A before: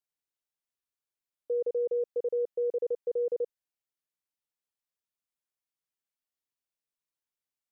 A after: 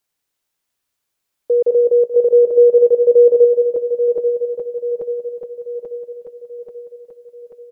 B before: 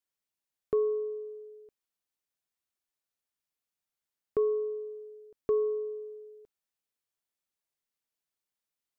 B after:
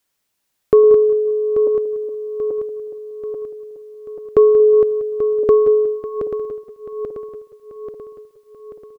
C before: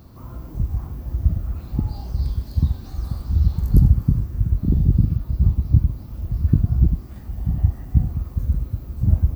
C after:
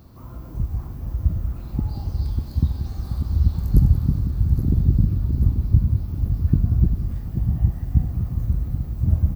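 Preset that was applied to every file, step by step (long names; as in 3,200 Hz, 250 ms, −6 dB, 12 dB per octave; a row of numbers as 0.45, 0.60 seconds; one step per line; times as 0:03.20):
feedback delay that plays each chunk backwards 418 ms, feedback 73%, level −8.5 dB
repeating echo 183 ms, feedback 32%, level −13 dB
normalise the peak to −3 dBFS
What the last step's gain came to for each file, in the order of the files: +15.0, +16.5, −2.0 decibels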